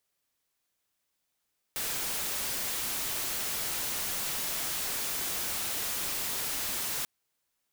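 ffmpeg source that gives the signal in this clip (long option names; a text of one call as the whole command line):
ffmpeg -f lavfi -i "anoisesrc=color=white:amplitude=0.0388:duration=5.29:sample_rate=44100:seed=1" out.wav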